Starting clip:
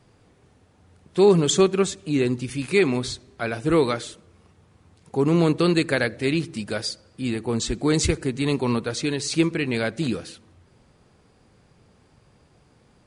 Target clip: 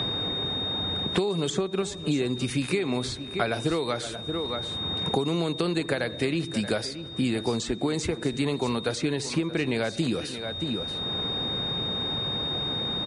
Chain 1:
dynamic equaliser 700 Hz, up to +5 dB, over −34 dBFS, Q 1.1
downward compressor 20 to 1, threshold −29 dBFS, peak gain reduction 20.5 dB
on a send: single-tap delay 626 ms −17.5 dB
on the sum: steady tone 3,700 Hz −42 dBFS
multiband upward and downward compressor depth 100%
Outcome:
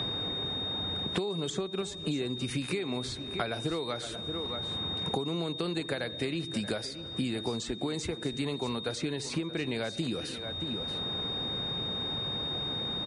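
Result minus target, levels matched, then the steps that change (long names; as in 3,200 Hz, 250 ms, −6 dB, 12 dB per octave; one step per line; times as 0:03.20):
downward compressor: peak gain reduction +6.5 dB
change: downward compressor 20 to 1, threshold −22 dBFS, peak gain reduction 13.5 dB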